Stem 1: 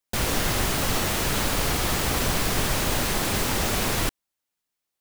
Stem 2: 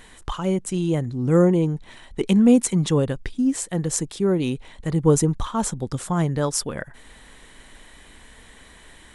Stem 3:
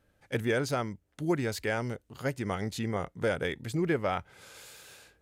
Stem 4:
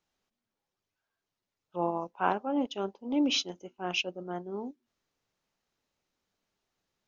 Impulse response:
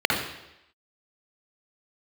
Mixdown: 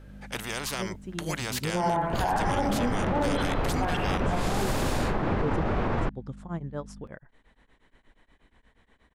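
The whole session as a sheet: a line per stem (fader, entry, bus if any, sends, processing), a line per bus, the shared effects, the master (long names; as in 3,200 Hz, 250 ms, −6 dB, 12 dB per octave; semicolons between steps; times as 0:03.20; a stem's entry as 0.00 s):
+2.0 dB, 2.00 s, no send, low-pass filter 1,300 Hz 12 dB per octave; brickwall limiter −19 dBFS, peak gain reduction 5 dB
−10.0 dB, 0.35 s, no send, low-pass filter 1,900 Hz 6 dB per octave; tremolo along a rectified sine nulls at 8.4 Hz
−2.5 dB, 0.00 s, no send, automatic gain control gain up to 6 dB; every bin compressed towards the loudest bin 4 to 1
−1.0 dB, 0.00 s, send −13 dB, lower of the sound and its delayed copy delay 1.2 ms; auto-filter low-pass saw up 5.8 Hz 590–4,100 Hz; mains hum 50 Hz, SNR 11 dB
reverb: on, RT60 0.85 s, pre-delay 51 ms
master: high-shelf EQ 6,600 Hz −7.5 dB; brickwall limiter −17.5 dBFS, peak gain reduction 12.5 dB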